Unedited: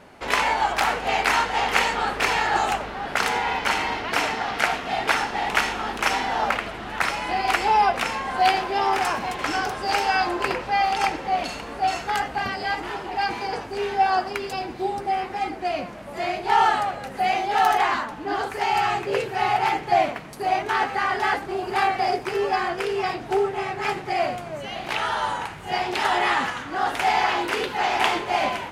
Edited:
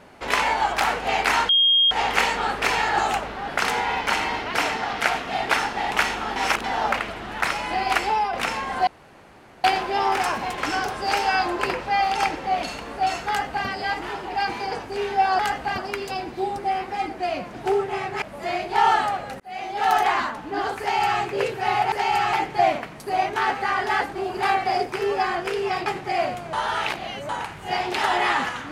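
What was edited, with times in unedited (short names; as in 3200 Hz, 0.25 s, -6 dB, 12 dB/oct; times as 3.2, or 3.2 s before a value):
1.49 add tone 3240 Hz -14 dBFS 0.42 s
5.94–6.22 reverse
7.55–7.91 fade out, to -9 dB
8.45 insert room tone 0.77 s
12.09–12.48 copy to 14.2
17.14–17.69 fade in linear
18.54–18.95 copy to 19.66
23.19–23.87 move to 15.96
24.54–25.3 reverse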